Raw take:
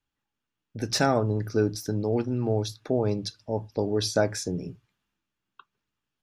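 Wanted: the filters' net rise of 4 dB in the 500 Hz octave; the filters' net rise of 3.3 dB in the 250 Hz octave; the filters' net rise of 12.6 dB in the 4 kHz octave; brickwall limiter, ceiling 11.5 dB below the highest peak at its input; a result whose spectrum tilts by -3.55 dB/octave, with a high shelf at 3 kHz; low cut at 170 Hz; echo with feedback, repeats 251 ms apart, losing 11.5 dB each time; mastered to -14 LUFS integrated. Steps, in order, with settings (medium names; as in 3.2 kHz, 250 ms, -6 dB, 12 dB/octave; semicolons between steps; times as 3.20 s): high-pass 170 Hz; peaking EQ 250 Hz +4 dB; peaking EQ 500 Hz +3.5 dB; treble shelf 3 kHz +8.5 dB; peaking EQ 4 kHz +8.5 dB; peak limiter -13.5 dBFS; feedback delay 251 ms, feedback 27%, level -11.5 dB; trim +11 dB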